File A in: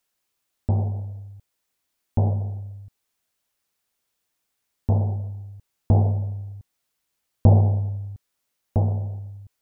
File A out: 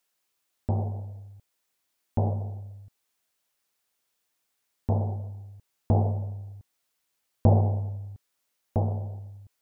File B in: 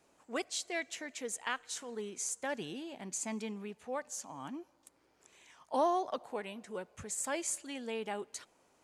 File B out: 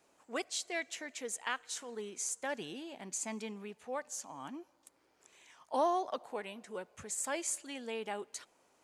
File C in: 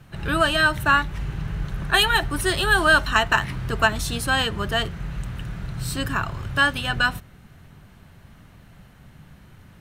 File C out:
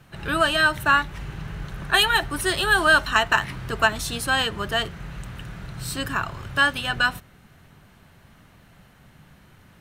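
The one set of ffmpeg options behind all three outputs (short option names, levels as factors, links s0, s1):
-af "lowshelf=f=200:g=-7"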